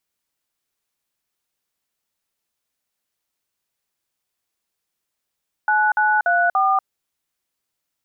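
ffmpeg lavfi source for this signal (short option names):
-f lavfi -i "aevalsrc='0.141*clip(min(mod(t,0.29),0.239-mod(t,0.29))/0.002,0,1)*(eq(floor(t/0.29),0)*(sin(2*PI*852*mod(t,0.29))+sin(2*PI*1477*mod(t,0.29)))+eq(floor(t/0.29),1)*(sin(2*PI*852*mod(t,0.29))+sin(2*PI*1477*mod(t,0.29)))+eq(floor(t/0.29),2)*(sin(2*PI*697*mod(t,0.29))+sin(2*PI*1477*mod(t,0.29)))+eq(floor(t/0.29),3)*(sin(2*PI*770*mod(t,0.29))+sin(2*PI*1209*mod(t,0.29))))':d=1.16:s=44100"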